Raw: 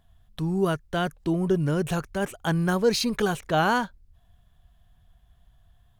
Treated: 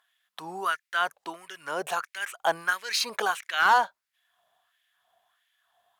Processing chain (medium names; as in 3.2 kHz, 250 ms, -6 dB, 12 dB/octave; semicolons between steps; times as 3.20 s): LFO high-pass sine 1.5 Hz 670–2100 Hz; one-sided clip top -14.5 dBFS